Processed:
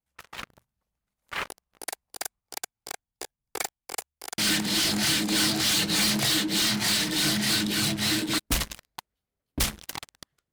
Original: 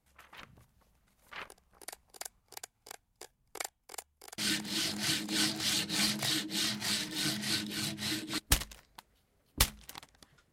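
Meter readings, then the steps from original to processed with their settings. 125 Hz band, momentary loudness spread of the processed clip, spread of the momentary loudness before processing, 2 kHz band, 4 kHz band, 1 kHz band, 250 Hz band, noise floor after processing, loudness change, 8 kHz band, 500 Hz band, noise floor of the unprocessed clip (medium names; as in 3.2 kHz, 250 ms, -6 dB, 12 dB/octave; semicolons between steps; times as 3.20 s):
+7.5 dB, 19 LU, 19 LU, +8.5 dB, +8.0 dB, +9.0 dB, +9.5 dB, under -85 dBFS, +7.5 dB, +8.0 dB, +9.5 dB, -76 dBFS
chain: waveshaping leveller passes 5; trim -5 dB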